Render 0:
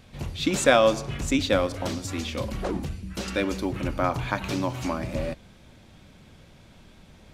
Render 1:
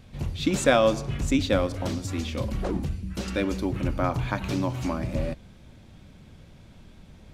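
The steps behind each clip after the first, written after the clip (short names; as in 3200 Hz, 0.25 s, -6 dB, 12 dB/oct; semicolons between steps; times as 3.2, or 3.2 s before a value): low shelf 300 Hz +7 dB; gain -3 dB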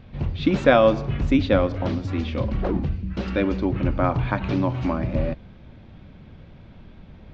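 Gaussian blur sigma 2.3 samples; gain +4.5 dB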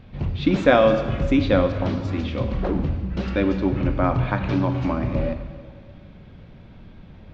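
reverb RT60 1.9 s, pre-delay 4 ms, DRR 7.5 dB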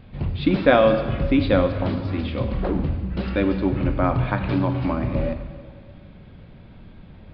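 downsampling 11025 Hz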